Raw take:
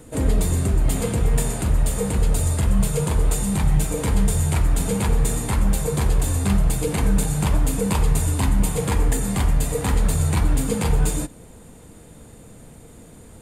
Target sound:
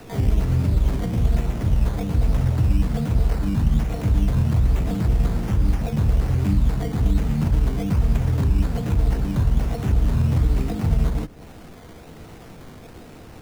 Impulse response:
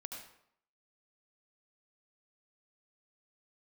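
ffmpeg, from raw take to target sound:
-filter_complex "[0:a]equalizer=frequency=2600:width_type=o:width=0.25:gain=7.5,asplit=2[link_01][link_02];[link_02]asetrate=66075,aresample=44100,atempo=0.66742,volume=-1dB[link_03];[link_01][link_03]amix=inputs=2:normalize=0,acrusher=samples=13:mix=1:aa=0.000001:lfo=1:lforange=7.8:lforate=1.2,acrossover=split=220|820[link_04][link_05][link_06];[link_04]acompressor=threshold=-14dB:ratio=4[link_07];[link_05]acompressor=threshold=-35dB:ratio=4[link_08];[link_06]acompressor=threshold=-42dB:ratio=4[link_09];[link_07][link_08][link_09]amix=inputs=3:normalize=0"

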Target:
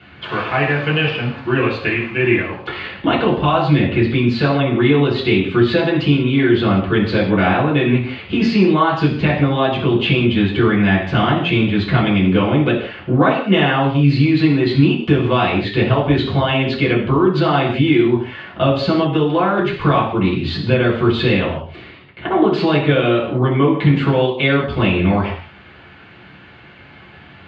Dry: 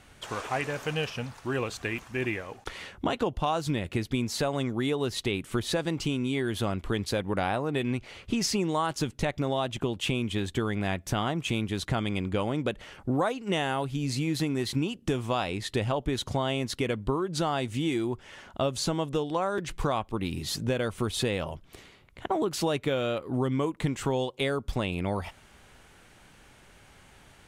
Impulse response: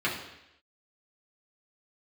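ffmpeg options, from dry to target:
-filter_complex "[0:a]lowpass=frequency=4000:width=0.5412,lowpass=frequency=4000:width=1.3066[link_01];[1:a]atrim=start_sample=2205,afade=type=out:start_time=0.25:duration=0.01,atrim=end_sample=11466[link_02];[link_01][link_02]afir=irnorm=-1:irlink=0,volume=3.5dB"

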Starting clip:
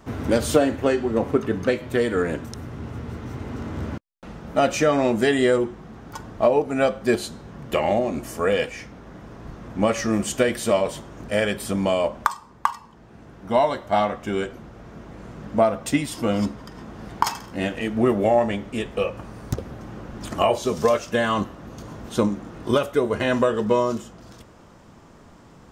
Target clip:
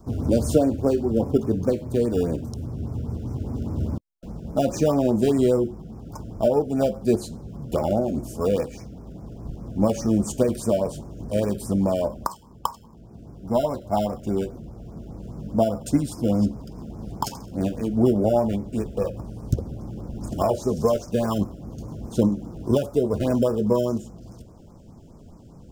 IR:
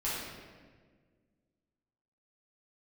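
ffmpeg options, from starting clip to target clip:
-filter_complex "[0:a]lowshelf=frequency=290:gain=10,acrossover=split=380|1200|3600[link_01][link_02][link_03][link_04];[link_03]acrusher=samples=21:mix=1:aa=0.000001[link_05];[link_01][link_02][link_05][link_04]amix=inputs=4:normalize=0,afftfilt=real='re*(1-between(b*sr/1024,920*pow(3600/920,0.5+0.5*sin(2*PI*4.9*pts/sr))/1.41,920*pow(3600/920,0.5+0.5*sin(2*PI*4.9*pts/sr))*1.41))':imag='im*(1-between(b*sr/1024,920*pow(3600/920,0.5+0.5*sin(2*PI*4.9*pts/sr))/1.41,920*pow(3600/920,0.5+0.5*sin(2*PI*4.9*pts/sr))*1.41))':win_size=1024:overlap=0.75,volume=-4dB"

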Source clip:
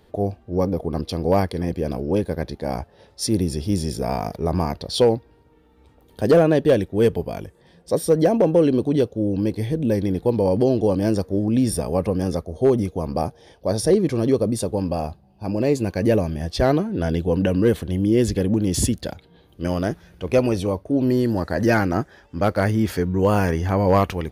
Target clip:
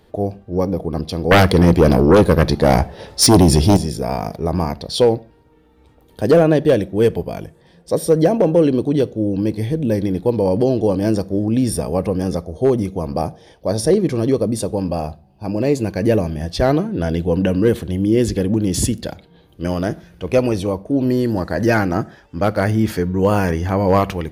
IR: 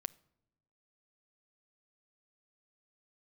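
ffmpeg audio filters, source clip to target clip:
-filter_complex "[0:a]asettb=1/sr,asplit=3[link_01][link_02][link_03];[link_01]atrim=end=1.314[link_04];[link_02]atrim=start=1.31:end=3.77,asetpts=PTS-STARTPTS,afade=type=in:duration=0.004:curve=qsin,afade=type=out:start_time=2.456:duration=0.004:curve=qsin,aeval=exprs='0.398*sin(PI/2*2.82*val(0)/0.398)':channel_layout=same[link_05];[link_03]atrim=start=3.766[link_06];[link_04][link_05]acrossfade=duration=0.004:curve1=hsin:curve2=qsin[link_07];[link_07][link_06]acrossfade=duration=0.004:curve1=qsin:curve2=hsin[link_08];[1:a]atrim=start_sample=2205,afade=type=out:start_time=0.22:duration=0.01,atrim=end_sample=10143,asetrate=48510,aresample=44100[link_09];[link_08][link_09]afir=irnorm=-1:irlink=0,volume=5.5dB"

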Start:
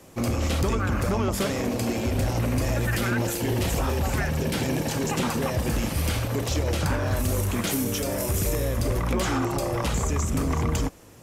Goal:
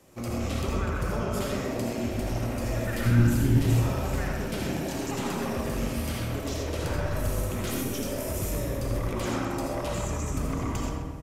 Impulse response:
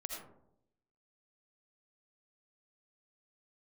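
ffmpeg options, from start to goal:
-filter_complex "[0:a]asplit=3[link_01][link_02][link_03];[link_01]afade=type=out:start_time=3.05:duration=0.02[link_04];[link_02]asubboost=boost=10.5:cutoff=200,afade=type=in:start_time=3.05:duration=0.02,afade=type=out:start_time=3.57:duration=0.02[link_05];[link_03]afade=type=in:start_time=3.57:duration=0.02[link_06];[link_04][link_05][link_06]amix=inputs=3:normalize=0,asplit=2[link_07][link_08];[link_08]adelay=130,lowpass=frequency=3300:poles=1,volume=-5.5dB,asplit=2[link_09][link_10];[link_10]adelay=130,lowpass=frequency=3300:poles=1,volume=0.54,asplit=2[link_11][link_12];[link_12]adelay=130,lowpass=frequency=3300:poles=1,volume=0.54,asplit=2[link_13][link_14];[link_14]adelay=130,lowpass=frequency=3300:poles=1,volume=0.54,asplit=2[link_15][link_16];[link_16]adelay=130,lowpass=frequency=3300:poles=1,volume=0.54,asplit=2[link_17][link_18];[link_18]adelay=130,lowpass=frequency=3300:poles=1,volume=0.54,asplit=2[link_19][link_20];[link_20]adelay=130,lowpass=frequency=3300:poles=1,volume=0.54[link_21];[link_07][link_09][link_11][link_13][link_15][link_17][link_19][link_21]amix=inputs=8:normalize=0[link_22];[1:a]atrim=start_sample=2205[link_23];[link_22][link_23]afir=irnorm=-1:irlink=0,volume=-4.5dB"

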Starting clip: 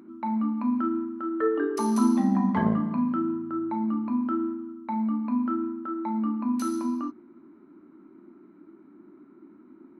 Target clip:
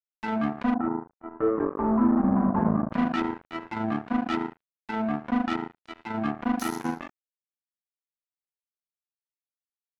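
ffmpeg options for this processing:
ffmpeg -i in.wav -filter_complex "[0:a]acrusher=bits=3:mix=0:aa=0.5,asettb=1/sr,asplit=3[link_01][link_02][link_03];[link_01]atrim=end=0.744[link_04];[link_02]atrim=start=0.74:end=2.92,asetpts=PTS-STARTPTS,afade=type=in:duration=0.004:curve=qsin,afade=type=out:start_time=2.176:duration=0.004:curve=qsin,lowpass=frequency=1200:width=0.5412,lowpass=frequency=1200:width=1.3066[link_05];[link_03]atrim=start=2.916[link_06];[link_04][link_05]acrossfade=duration=0.004:curve1=hsin:curve2=qsin[link_07];[link_07][link_06]acrossfade=duration=0.004:curve1=qsin:curve2=hsin" out.wav

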